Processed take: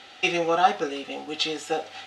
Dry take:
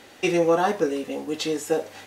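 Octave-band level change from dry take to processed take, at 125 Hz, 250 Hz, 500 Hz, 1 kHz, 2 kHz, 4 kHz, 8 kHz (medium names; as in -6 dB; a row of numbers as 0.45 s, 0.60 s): -7.0 dB, -6.5 dB, -5.0 dB, +3.5 dB, +3.0 dB, +5.5 dB, -3.5 dB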